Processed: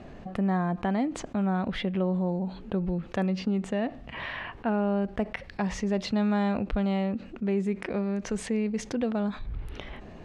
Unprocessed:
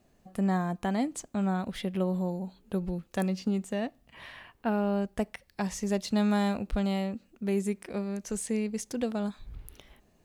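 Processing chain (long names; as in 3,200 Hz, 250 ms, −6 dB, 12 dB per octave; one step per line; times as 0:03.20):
low-pass filter 2,800 Hz 12 dB per octave
envelope flattener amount 50%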